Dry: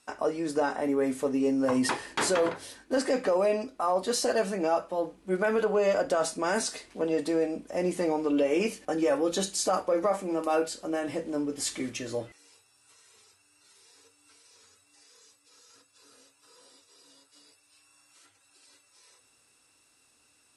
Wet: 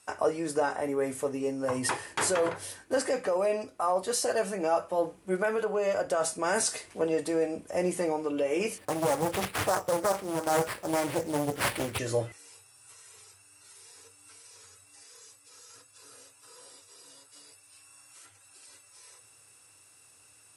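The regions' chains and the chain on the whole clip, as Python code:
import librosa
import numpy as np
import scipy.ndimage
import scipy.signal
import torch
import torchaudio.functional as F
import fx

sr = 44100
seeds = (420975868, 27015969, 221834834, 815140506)

y = fx.chain(x, sr, fx.hum_notches(base_hz=60, count=3),
    fx.sample_hold(seeds[0], rate_hz=6500.0, jitter_pct=0),
    fx.doppler_dist(depth_ms=0.76), at=(8.78, 11.99))
y = scipy.signal.sosfilt(scipy.signal.butter(2, 73.0, 'highpass', fs=sr, output='sos'), y)
y = fx.rider(y, sr, range_db=5, speed_s=0.5)
y = fx.graphic_eq_15(y, sr, hz=(100, 250, 4000, 10000), db=(8, -8, -4, 6))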